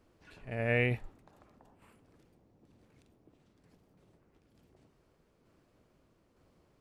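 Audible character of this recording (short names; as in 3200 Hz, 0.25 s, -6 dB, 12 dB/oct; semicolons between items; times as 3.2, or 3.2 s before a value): tremolo saw down 1.1 Hz, depth 35%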